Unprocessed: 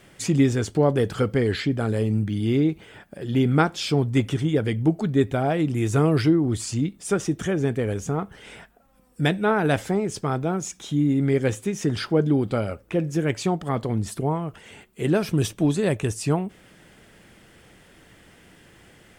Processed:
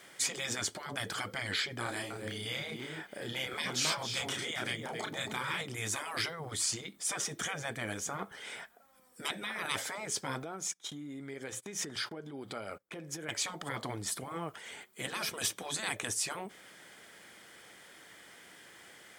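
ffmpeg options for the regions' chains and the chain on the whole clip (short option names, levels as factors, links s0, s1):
-filter_complex "[0:a]asettb=1/sr,asplit=3[s0][s1][s2];[s0]atrim=end=1.834[s3];[s1]atrim=start=1.83:end=5.61,asetpts=PTS-STARTPTS,afade=t=in:d=0.004:c=qsin,afade=t=out:st=3.776:d=0.004:c=qsin,asplit=2[s4][s5];[s5]adelay=32,volume=0.708[s6];[s4][s6]amix=inputs=2:normalize=0,atrim=end_sample=166698,aecho=1:1:270:0.251,atrim=end_sample=166698[s7];[s2]atrim=start=5.606[s8];[s3][s7]acrossfade=d=0.004:c1=hsin:c2=qsin[s9];[s9][s8]acrossfade=d=0.004:c1=qsin:c2=hsin,asettb=1/sr,asplit=3[s10][s11][s12];[s10]atrim=end=10.434[s13];[s11]atrim=start=10.43:end=13.29,asetpts=PTS-STARTPTS,afade=t=in:d=0.004:c=qsin,afade=t=out:st=2.856:d=0.004:c=qsin,bandreject=f=60:t=h:w=6,bandreject=f=120:t=h:w=6,bandreject=f=180:t=h:w=6,agate=range=0.0708:threshold=0.0112:ratio=16:release=100:detection=peak,acompressor=threshold=0.0316:ratio=12:attack=3.2:release=140:knee=1:detection=peak[s14];[s12]atrim=start=13.286[s15];[s13][s14]acrossfade=d=0.004:c1=hsin:c2=qsin[s16];[s16][s15]acrossfade=d=0.004:c1=qsin:c2=hsin,highpass=f=1000:p=1,bandreject=f=2700:w=8,afftfilt=real='re*lt(hypot(re,im),0.0794)':imag='im*lt(hypot(re,im),0.0794)':win_size=1024:overlap=0.75,volume=1.26"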